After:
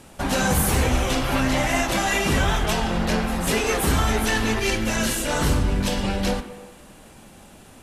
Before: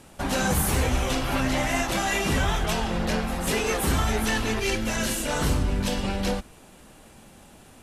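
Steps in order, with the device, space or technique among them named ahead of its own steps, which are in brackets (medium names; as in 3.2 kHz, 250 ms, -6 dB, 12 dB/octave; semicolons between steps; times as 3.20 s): filtered reverb send (on a send: high-pass 160 Hz + low-pass 3.1 kHz + reverberation RT60 1.3 s, pre-delay 38 ms, DRR 10.5 dB); on the sum: trim +3 dB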